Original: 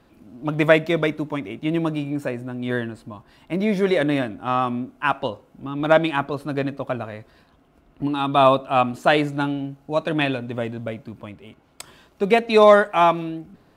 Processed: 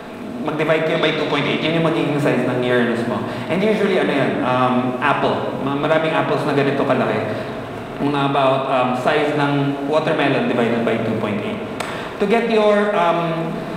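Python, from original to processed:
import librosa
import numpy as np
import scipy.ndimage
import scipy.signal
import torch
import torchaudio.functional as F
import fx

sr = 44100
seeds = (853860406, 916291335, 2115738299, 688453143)

y = fx.bin_compress(x, sr, power=0.6)
y = fx.peak_eq(y, sr, hz=4000.0, db=14.0, octaves=1.4, at=(0.95, 1.67))
y = fx.rider(y, sr, range_db=3, speed_s=0.5)
y = fx.room_shoebox(y, sr, seeds[0], volume_m3=1100.0, walls='mixed', distance_m=1.6)
y = fx.band_squash(y, sr, depth_pct=40)
y = F.gain(torch.from_numpy(y), -3.0).numpy()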